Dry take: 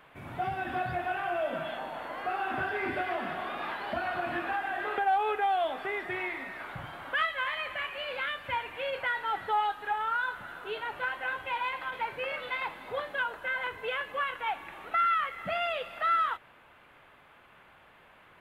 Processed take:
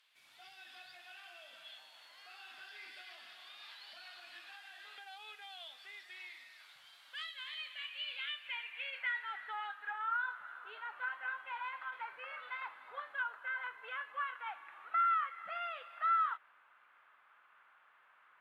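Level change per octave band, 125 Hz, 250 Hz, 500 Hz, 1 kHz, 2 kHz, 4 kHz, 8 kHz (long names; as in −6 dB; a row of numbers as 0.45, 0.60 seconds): below −40 dB, below −35 dB, −24.0 dB, −9.5 dB, −9.0 dB, −5.5 dB, can't be measured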